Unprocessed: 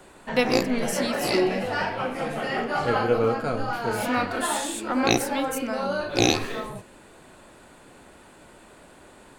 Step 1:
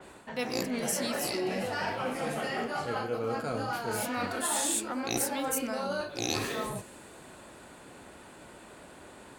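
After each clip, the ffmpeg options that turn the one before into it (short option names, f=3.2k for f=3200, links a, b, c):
-af "highpass=49,areverse,acompressor=threshold=-29dB:ratio=10,areverse,adynamicequalizer=threshold=0.00251:dfrequency=4800:dqfactor=0.7:tfrequency=4800:tqfactor=0.7:attack=5:release=100:ratio=0.375:range=4:mode=boostabove:tftype=highshelf"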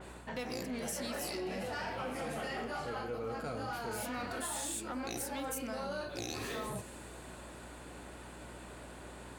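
-af "acompressor=threshold=-34dB:ratio=6,asoftclip=type=tanh:threshold=-31dB,aeval=exprs='val(0)+0.00224*(sin(2*PI*60*n/s)+sin(2*PI*2*60*n/s)/2+sin(2*PI*3*60*n/s)/3+sin(2*PI*4*60*n/s)/4+sin(2*PI*5*60*n/s)/5)':c=same"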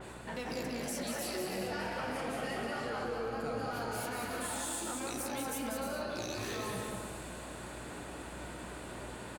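-filter_complex "[0:a]alimiter=level_in=11.5dB:limit=-24dB:level=0:latency=1,volume=-11.5dB,flanger=delay=7.8:depth=5.8:regen=-65:speed=0.77:shape=triangular,asplit=2[a][b];[b]aecho=0:1:190|304|372.4|413.4|438.1:0.631|0.398|0.251|0.158|0.1[c];[a][c]amix=inputs=2:normalize=0,volume=7dB"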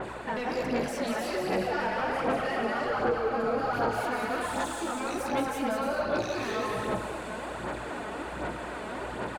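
-filter_complex "[0:a]asplit=2[a][b];[b]highpass=f=720:p=1,volume=13dB,asoftclip=type=tanh:threshold=-25dB[c];[a][c]amix=inputs=2:normalize=0,lowpass=f=1.1k:p=1,volume=-6dB,aphaser=in_gain=1:out_gain=1:delay=4.7:decay=0.44:speed=1.3:type=sinusoidal,volume=6dB"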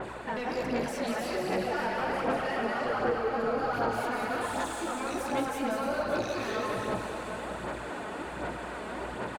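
-af "aecho=1:1:572:0.299,volume=-1.5dB"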